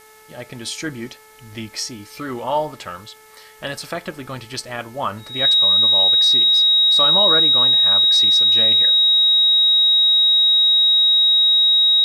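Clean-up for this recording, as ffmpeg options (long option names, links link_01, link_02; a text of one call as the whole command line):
ffmpeg -i in.wav -af "bandreject=frequency=434.1:width_type=h:width=4,bandreject=frequency=868.2:width_type=h:width=4,bandreject=frequency=1302.3:width_type=h:width=4,bandreject=frequency=1736.4:width_type=h:width=4,bandreject=frequency=2170.5:width_type=h:width=4,bandreject=frequency=3800:width=30,agate=range=-21dB:threshold=-35dB" out.wav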